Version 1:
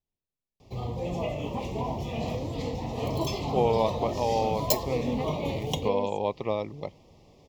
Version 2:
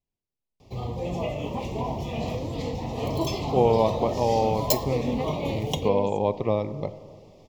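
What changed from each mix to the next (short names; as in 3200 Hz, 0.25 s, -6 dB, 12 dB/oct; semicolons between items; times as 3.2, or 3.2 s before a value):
first voice: add tilt -2 dB/oct; reverb: on, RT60 2.0 s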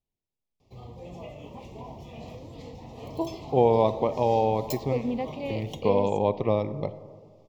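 background -12.0 dB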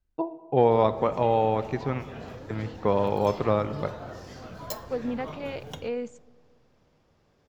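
first voice: entry -3.00 s; second voice: send -11.0 dB; master: remove Butterworth band-stop 1500 Hz, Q 1.3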